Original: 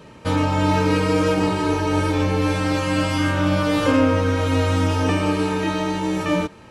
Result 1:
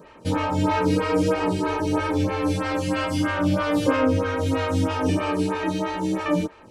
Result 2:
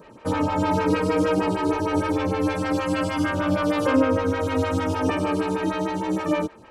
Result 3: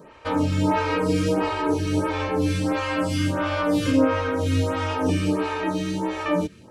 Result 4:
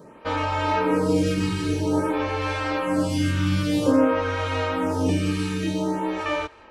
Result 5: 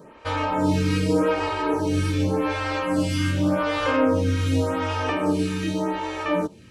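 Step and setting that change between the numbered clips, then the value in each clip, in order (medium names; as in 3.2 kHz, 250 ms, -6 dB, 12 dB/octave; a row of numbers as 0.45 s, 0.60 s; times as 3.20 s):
lamp-driven phase shifter, rate: 3.1 Hz, 6.5 Hz, 1.5 Hz, 0.51 Hz, 0.86 Hz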